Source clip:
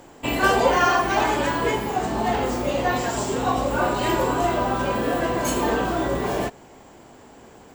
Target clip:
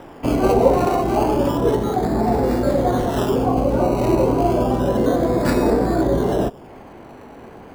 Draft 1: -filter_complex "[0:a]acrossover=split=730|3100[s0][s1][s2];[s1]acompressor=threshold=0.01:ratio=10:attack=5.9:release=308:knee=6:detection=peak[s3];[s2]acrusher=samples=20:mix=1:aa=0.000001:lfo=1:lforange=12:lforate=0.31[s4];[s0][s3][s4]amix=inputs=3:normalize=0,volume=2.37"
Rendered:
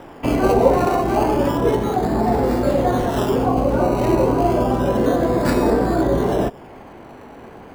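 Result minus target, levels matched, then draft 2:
compression: peak gain reduction -8.5 dB
-filter_complex "[0:a]acrossover=split=730|3100[s0][s1][s2];[s1]acompressor=threshold=0.00335:ratio=10:attack=5.9:release=308:knee=6:detection=peak[s3];[s2]acrusher=samples=20:mix=1:aa=0.000001:lfo=1:lforange=12:lforate=0.31[s4];[s0][s3][s4]amix=inputs=3:normalize=0,volume=2.37"

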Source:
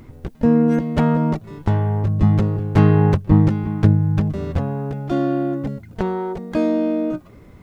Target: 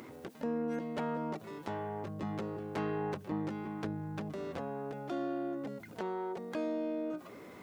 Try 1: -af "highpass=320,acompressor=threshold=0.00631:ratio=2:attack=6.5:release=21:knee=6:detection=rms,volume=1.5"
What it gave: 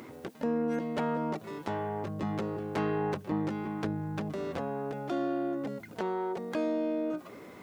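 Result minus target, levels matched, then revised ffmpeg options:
compression: peak gain reduction -5 dB
-af "highpass=320,acompressor=threshold=0.00211:ratio=2:attack=6.5:release=21:knee=6:detection=rms,volume=1.5"

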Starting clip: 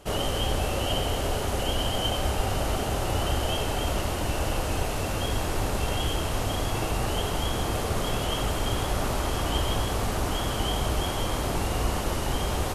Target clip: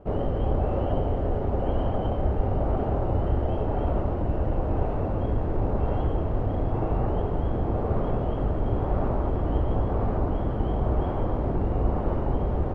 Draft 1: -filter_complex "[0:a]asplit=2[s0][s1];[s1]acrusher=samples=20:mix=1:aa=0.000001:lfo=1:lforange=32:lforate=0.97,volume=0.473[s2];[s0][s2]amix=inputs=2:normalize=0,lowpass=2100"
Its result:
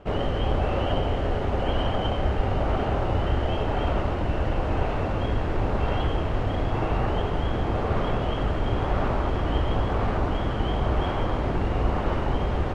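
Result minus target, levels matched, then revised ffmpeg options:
2 kHz band +11.0 dB
-filter_complex "[0:a]asplit=2[s0][s1];[s1]acrusher=samples=20:mix=1:aa=0.000001:lfo=1:lforange=32:lforate=0.97,volume=0.473[s2];[s0][s2]amix=inputs=2:normalize=0,lowpass=800"

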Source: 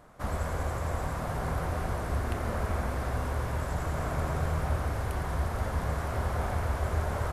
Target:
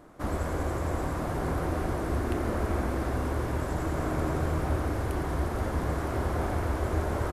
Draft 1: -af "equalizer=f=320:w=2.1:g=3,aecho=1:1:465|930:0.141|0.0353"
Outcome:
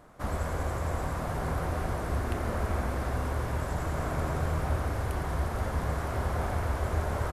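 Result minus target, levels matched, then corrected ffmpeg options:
250 Hz band -4.0 dB
-af "equalizer=f=320:w=2.1:g=12,aecho=1:1:465|930:0.141|0.0353"

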